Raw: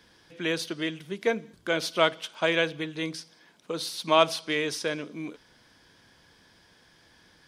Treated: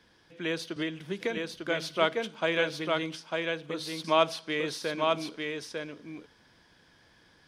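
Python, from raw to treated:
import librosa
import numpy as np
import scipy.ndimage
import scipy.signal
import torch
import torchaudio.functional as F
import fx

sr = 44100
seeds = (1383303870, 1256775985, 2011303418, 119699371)

y = fx.high_shelf(x, sr, hz=5500.0, db=-6.5)
y = y + 10.0 ** (-3.5 / 20.0) * np.pad(y, (int(899 * sr / 1000.0), 0))[:len(y)]
y = fx.band_squash(y, sr, depth_pct=100, at=(0.76, 1.37))
y = y * 10.0 ** (-3.0 / 20.0)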